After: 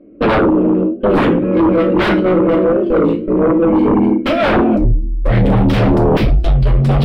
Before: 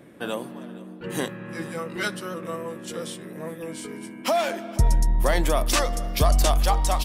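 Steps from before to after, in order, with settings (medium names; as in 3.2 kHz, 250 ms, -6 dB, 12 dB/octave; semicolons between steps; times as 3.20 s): local Wiener filter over 25 samples; compressor with a negative ratio -28 dBFS, ratio -1; 1.08–3.22 s: bass shelf 480 Hz -2.5 dB; gate with hold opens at -25 dBFS; static phaser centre 360 Hz, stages 4; reverberation, pre-delay 4 ms, DRR -0.5 dB; sine folder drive 14 dB, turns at -12 dBFS; distance through air 430 m; warped record 33 1/3 rpm, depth 160 cents; trim +5 dB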